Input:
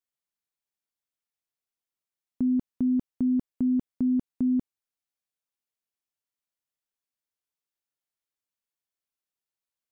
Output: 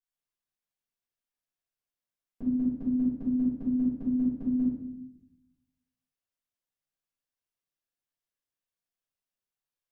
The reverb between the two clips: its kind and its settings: simulated room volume 230 m³, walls mixed, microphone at 5.1 m; trim -15 dB

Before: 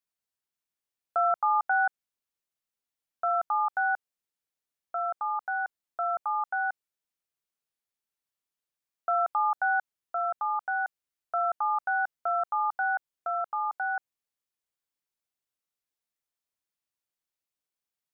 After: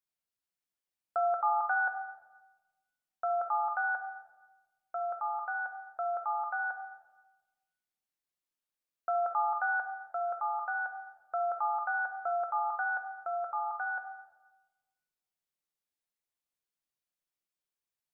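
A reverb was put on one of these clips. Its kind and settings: simulated room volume 730 m³, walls mixed, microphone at 0.92 m; trim -4.5 dB

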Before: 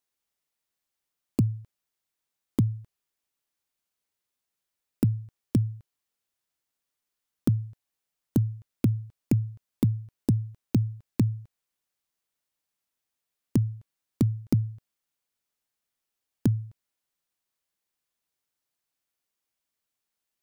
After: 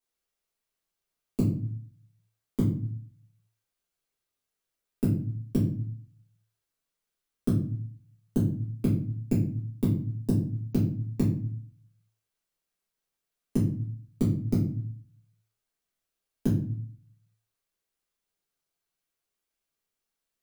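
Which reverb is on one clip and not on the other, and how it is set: simulated room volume 43 m³, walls mixed, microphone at 1.7 m; trim -9.5 dB

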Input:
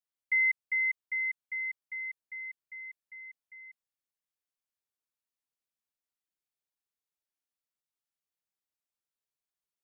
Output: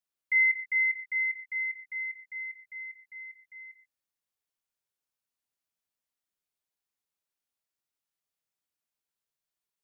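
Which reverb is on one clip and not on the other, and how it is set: gated-style reverb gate 150 ms flat, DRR 5 dB; trim +1 dB

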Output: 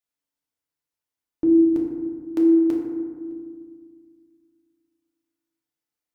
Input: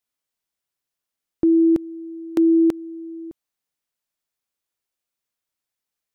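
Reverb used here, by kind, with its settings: FDN reverb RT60 1.8 s, low-frequency decay 1.4×, high-frequency decay 0.35×, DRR -2 dB; trim -7 dB

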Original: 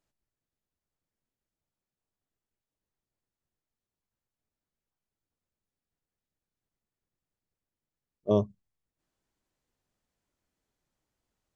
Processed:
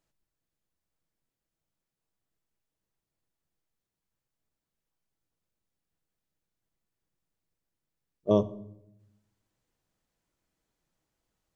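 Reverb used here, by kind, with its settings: simulated room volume 2400 m³, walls furnished, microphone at 0.66 m; trim +1.5 dB

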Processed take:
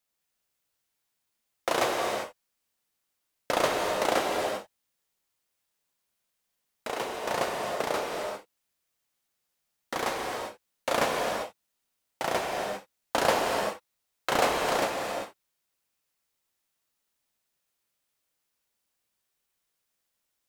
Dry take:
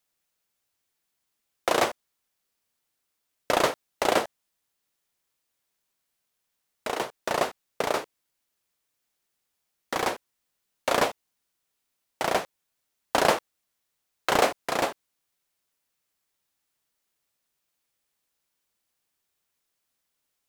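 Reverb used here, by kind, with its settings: gated-style reverb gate 420 ms flat, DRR -0.5 dB; trim -4 dB

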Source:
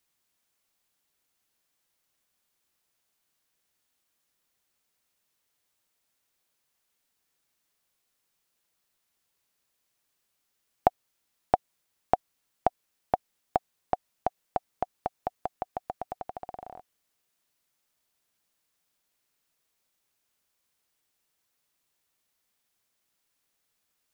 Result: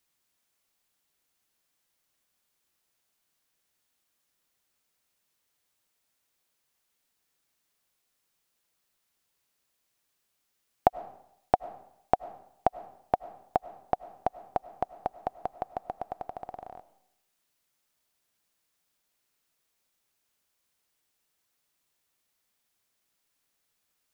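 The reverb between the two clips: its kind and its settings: algorithmic reverb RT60 0.74 s, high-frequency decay 0.85×, pre-delay 60 ms, DRR 16.5 dB

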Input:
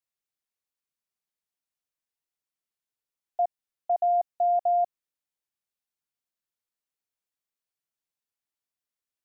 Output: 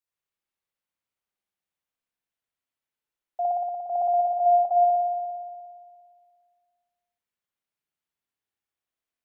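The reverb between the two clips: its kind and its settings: spring tank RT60 2 s, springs 58 ms, chirp 65 ms, DRR -6 dB; trim -3.5 dB

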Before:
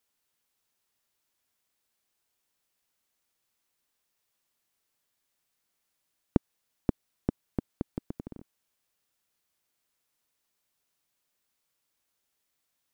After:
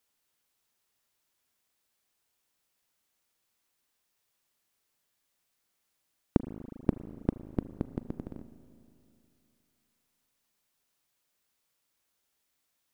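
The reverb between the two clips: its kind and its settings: spring tank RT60 2.8 s, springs 36/40 ms, chirp 25 ms, DRR 12 dB; trim +1 dB

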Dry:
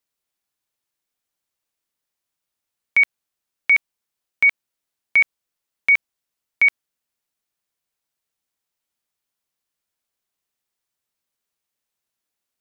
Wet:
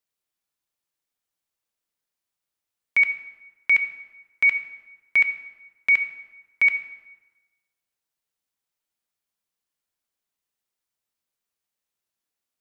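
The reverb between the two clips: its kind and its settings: plate-style reverb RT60 1.2 s, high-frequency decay 0.75×, DRR 8.5 dB; trim -4 dB

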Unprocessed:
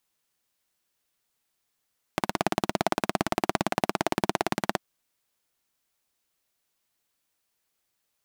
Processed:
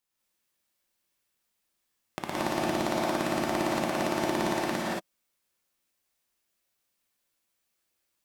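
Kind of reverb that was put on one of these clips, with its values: gated-style reverb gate 250 ms rising, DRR -6.5 dB; trim -8 dB

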